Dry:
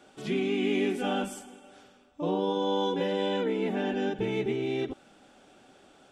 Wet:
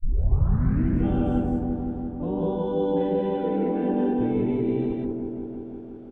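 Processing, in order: tape start-up on the opening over 1.05 s; tilt EQ -3.5 dB/octave; on a send: feedback echo behind a low-pass 171 ms, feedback 77%, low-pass 870 Hz, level -4 dB; on the sum: peak limiter -11 dBFS, peak gain reduction 8 dB; low-pass 2.2 kHz 6 dB/octave; loudspeakers at several distances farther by 49 m -6 dB, 67 m -2 dB; trim -5.5 dB

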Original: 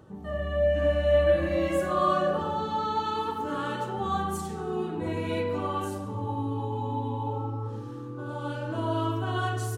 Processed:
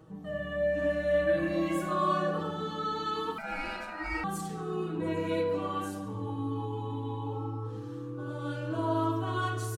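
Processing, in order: peaking EQ 730 Hz -3 dB 0.31 oct; comb 6.3 ms, depth 79%; 3.38–4.24 s: ring modulator 1.1 kHz; trim -4 dB

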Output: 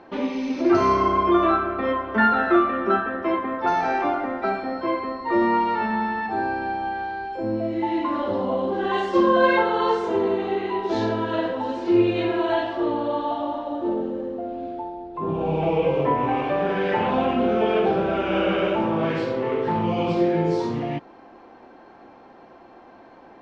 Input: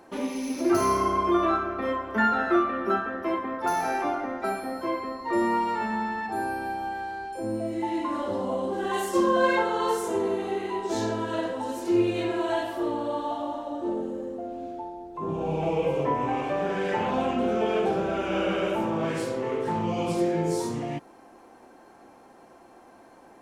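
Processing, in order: low-pass 4.3 kHz 24 dB/octave; trim +4.5 dB

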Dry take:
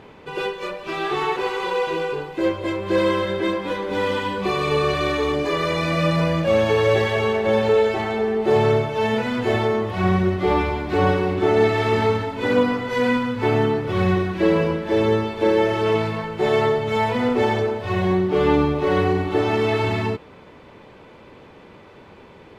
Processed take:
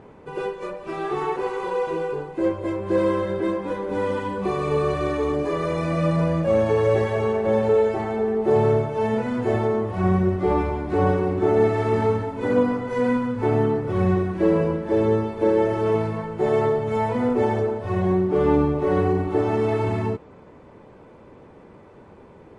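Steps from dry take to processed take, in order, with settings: peaking EQ 3.5 kHz -13.5 dB 2 oct; MP3 48 kbps 32 kHz

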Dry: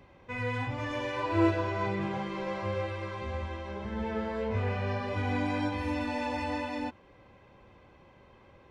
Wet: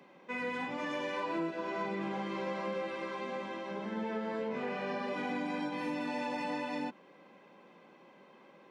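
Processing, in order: octave divider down 1 oct, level -5 dB; steep high-pass 170 Hz 48 dB/octave; compression 10:1, threshold -32 dBFS, peak gain reduction 12 dB

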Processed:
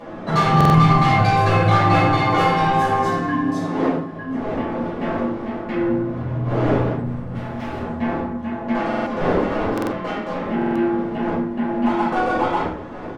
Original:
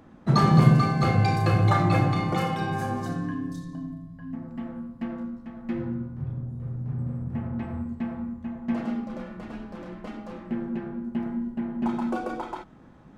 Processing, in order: wind noise 370 Hz -37 dBFS; 0.68–1.17 s: comb 1 ms, depth 87%; 3.44–4.12 s: high-pass 160 Hz; in parallel at +1 dB: compression, threshold -27 dBFS, peak gain reduction 16 dB; on the sum: overdrive pedal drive 25 dB, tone 3.2 kHz, clips at -0.5 dBFS; 7.04–7.82 s: overload inside the chain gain 21 dB; flange 0.93 Hz, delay 8.6 ms, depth 3.2 ms, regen -43%; on a send: delay 788 ms -23.5 dB; on the sum: simulated room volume 390 m³, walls furnished, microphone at 5.6 m; buffer glitch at 0.56/8.88/9.73/10.57 s, samples 2048, times 3; trim -12 dB

